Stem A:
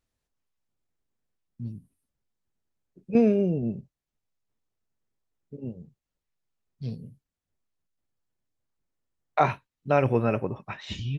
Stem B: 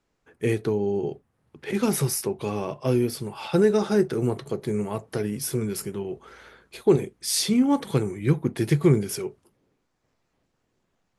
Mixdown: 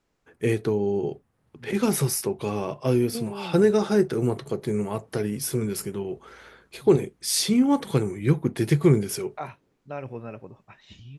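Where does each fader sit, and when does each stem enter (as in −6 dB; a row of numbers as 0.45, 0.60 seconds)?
−13.0, +0.5 decibels; 0.00, 0.00 seconds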